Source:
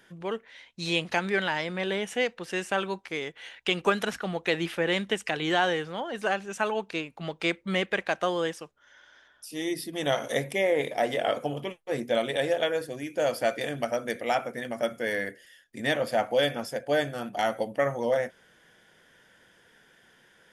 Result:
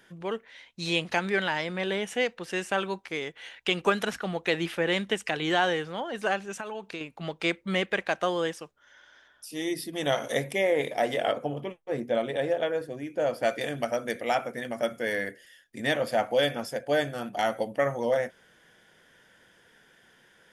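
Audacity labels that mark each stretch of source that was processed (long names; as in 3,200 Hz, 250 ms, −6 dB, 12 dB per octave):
6.510000	7.010000	downward compressor, threshold −32 dBFS
11.320000	13.430000	high-shelf EQ 2,300 Hz −11 dB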